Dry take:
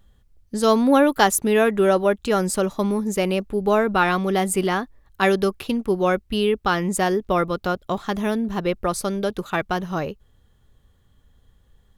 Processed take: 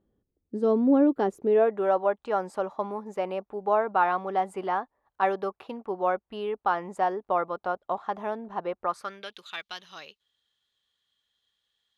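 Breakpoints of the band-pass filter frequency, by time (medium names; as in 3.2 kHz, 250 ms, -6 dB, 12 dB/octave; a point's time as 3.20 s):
band-pass filter, Q 2
1.28 s 340 Hz
1.87 s 830 Hz
8.81 s 830 Hz
9.42 s 3.7 kHz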